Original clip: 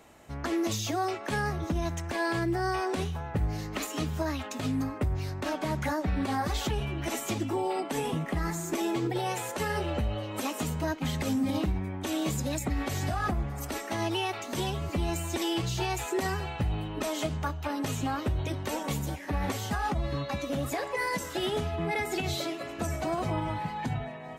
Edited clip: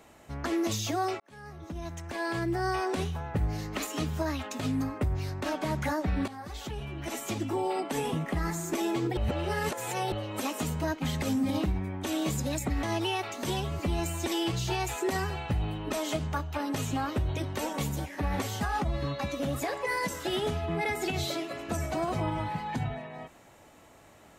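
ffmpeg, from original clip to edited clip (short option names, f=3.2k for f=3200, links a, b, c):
-filter_complex "[0:a]asplit=6[a][b][c][d][e][f];[a]atrim=end=1.2,asetpts=PTS-STARTPTS,afade=t=out:st=1.196:d=0.004:c=hsin[g];[b]atrim=start=1.2:end=6.28,asetpts=PTS-STARTPTS,afade=t=in:d=1.5,afade=t=out:st=5.076:d=0.004:c=hsin:silence=0.16788[h];[c]atrim=start=6.28:end=9.172,asetpts=PTS-STARTPTS,afade=t=in:d=1.35:silence=0.16788[i];[d]atrim=start=9.168:end=10.122,asetpts=PTS-STARTPTS,areverse[j];[e]atrim=start=10.118:end=12.832[k];[f]atrim=start=13.928[l];[g][h][i]concat=n=3:v=0:a=1[m];[m][j]acrossfade=d=0.004:c1=hsin:c2=hsin[n];[n][k]acrossfade=d=0.004:c1=hsin:c2=hsin[o];[o][l]acrossfade=d=0.004:c1=hsin:c2=hsin"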